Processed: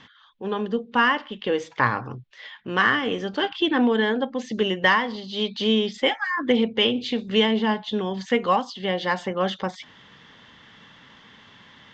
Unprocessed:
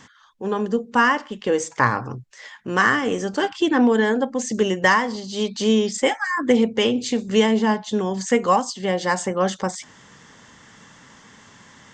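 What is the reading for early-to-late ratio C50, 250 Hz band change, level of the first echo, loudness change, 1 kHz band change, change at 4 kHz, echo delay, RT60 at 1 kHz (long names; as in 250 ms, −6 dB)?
no reverb audible, −3.5 dB, no echo audible, −2.5 dB, −3.0 dB, +3.0 dB, no echo audible, no reverb audible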